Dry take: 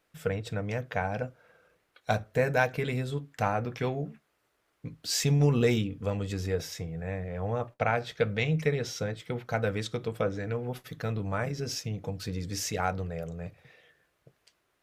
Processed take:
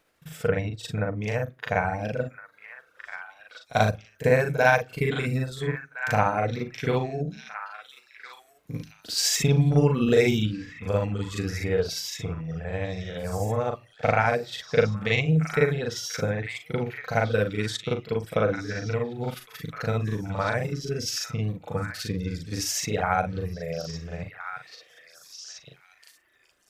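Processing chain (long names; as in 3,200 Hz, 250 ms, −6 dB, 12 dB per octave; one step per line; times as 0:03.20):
reverb reduction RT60 0.64 s
echo through a band-pass that steps 760 ms, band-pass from 1,600 Hz, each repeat 1.4 octaves, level −7 dB
time stretch by overlap-add 1.8×, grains 170 ms
level +6.5 dB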